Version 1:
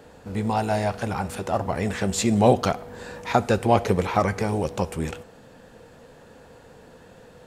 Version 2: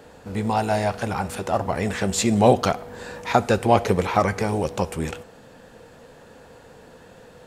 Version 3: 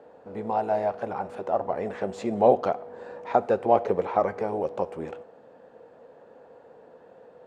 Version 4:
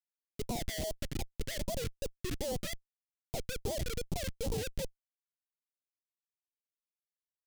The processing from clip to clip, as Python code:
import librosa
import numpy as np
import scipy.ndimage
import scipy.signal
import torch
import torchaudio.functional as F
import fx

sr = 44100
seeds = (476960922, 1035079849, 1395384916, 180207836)

y1 = fx.low_shelf(x, sr, hz=350.0, db=-2.5)
y1 = y1 * 10.0 ** (2.5 / 20.0)
y2 = fx.bandpass_q(y1, sr, hz=570.0, q=1.2)
y2 = y2 * 10.0 ** (-1.0 / 20.0)
y3 = fx.sine_speech(y2, sr)
y3 = fx.schmitt(y3, sr, flips_db=-30.0)
y3 = fx.phaser_stages(y3, sr, stages=2, low_hz=730.0, high_hz=1700.0, hz=2.5, feedback_pct=25)
y3 = y3 * 10.0 ** (-4.0 / 20.0)